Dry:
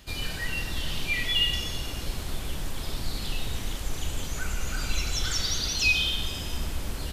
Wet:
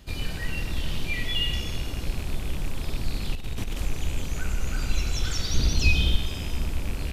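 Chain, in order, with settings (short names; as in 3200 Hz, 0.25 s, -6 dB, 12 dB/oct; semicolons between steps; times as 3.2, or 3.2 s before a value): rattling part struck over -35 dBFS, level -26 dBFS; tilt shelf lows +4 dB, about 630 Hz; 3.35–3.85 negative-ratio compressor -28 dBFS, ratio -1; 5.54–6.16 low shelf 370 Hz +9 dB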